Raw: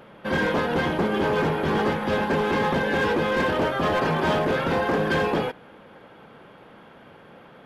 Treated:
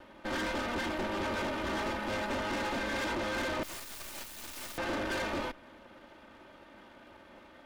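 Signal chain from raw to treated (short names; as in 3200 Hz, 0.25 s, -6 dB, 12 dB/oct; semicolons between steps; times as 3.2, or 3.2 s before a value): minimum comb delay 3.3 ms; tube stage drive 30 dB, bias 0.6; 3.63–4.78 wrapped overs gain 36.5 dB; gain -1.5 dB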